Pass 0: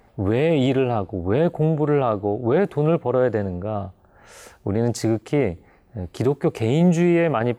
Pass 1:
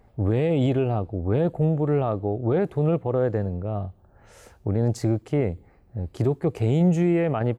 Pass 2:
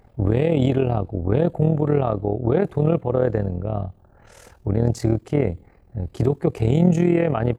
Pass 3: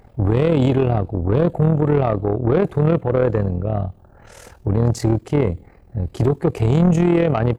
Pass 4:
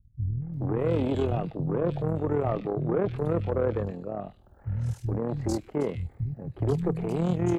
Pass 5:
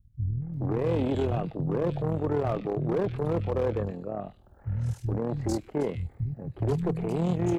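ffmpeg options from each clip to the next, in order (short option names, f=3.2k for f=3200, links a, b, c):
-af "firequalizer=gain_entry='entry(120,0);entry(180,-5);entry(1400,-10)':delay=0.05:min_phase=1,volume=2dB"
-af "tremolo=f=40:d=0.71,volume=6dB"
-af "asoftclip=type=tanh:threshold=-14dB,volume=5dB"
-filter_complex "[0:a]acrossover=split=160|2300[a][b][c];[b]adelay=420[d];[c]adelay=540[e];[a][d][e]amix=inputs=3:normalize=0,volume=-8.5dB"
-af "asoftclip=type=hard:threshold=-20.5dB"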